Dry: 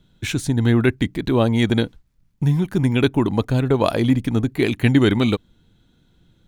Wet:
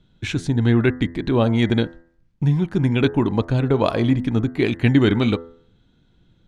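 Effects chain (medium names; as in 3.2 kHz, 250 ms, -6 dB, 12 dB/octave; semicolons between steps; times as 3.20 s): distance through air 84 m; de-hum 84.07 Hz, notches 24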